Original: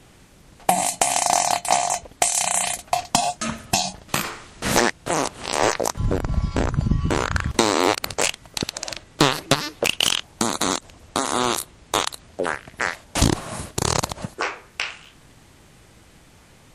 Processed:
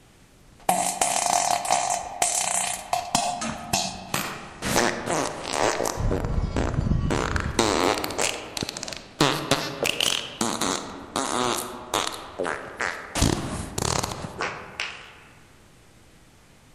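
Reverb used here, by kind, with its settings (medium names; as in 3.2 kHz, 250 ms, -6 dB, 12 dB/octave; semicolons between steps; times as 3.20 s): algorithmic reverb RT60 2.3 s, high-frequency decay 0.45×, pre-delay 5 ms, DRR 7.5 dB; trim -3.5 dB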